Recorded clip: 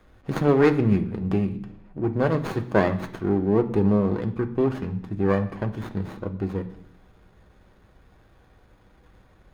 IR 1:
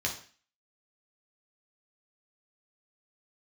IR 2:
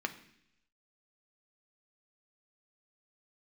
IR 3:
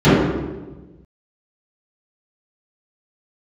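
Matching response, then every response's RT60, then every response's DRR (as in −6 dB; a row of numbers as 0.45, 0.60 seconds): 2; 0.40, 0.75, 1.2 seconds; −1.0, 5.5, −18.0 decibels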